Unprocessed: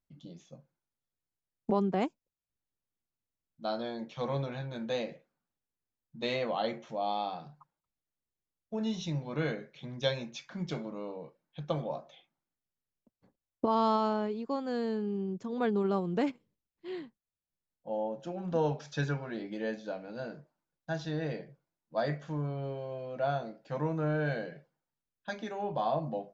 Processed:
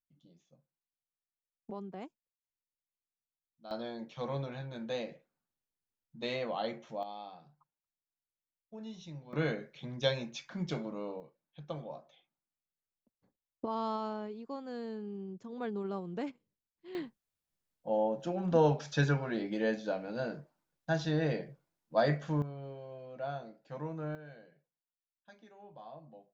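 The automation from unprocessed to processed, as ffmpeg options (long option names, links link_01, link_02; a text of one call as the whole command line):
ffmpeg -i in.wav -af "asetnsamples=nb_out_samples=441:pad=0,asendcmd='3.71 volume volume -3.5dB;7.03 volume volume -12dB;9.33 volume volume 0dB;11.2 volume volume -8dB;16.95 volume volume 3.5dB;22.42 volume volume -7.5dB;24.15 volume volume -19dB',volume=-14.5dB" out.wav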